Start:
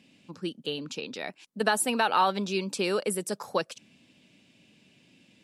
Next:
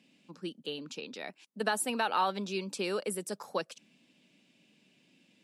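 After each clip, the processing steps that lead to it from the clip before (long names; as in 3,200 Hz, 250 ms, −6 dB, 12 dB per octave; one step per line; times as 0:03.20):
high-pass filter 150 Hz 24 dB per octave
level −5.5 dB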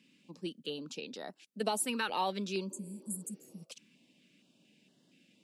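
healed spectral selection 0:02.73–0:03.60, 250–6,300 Hz both
notch on a step sequencer 4.3 Hz 700–2,400 Hz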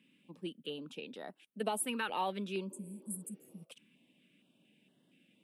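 flat-topped bell 5,500 Hz −13 dB 1 octave
level −2 dB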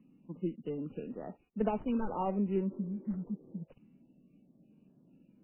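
running median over 25 samples
spectral tilt −3.5 dB per octave
level +1.5 dB
MP3 8 kbit/s 8,000 Hz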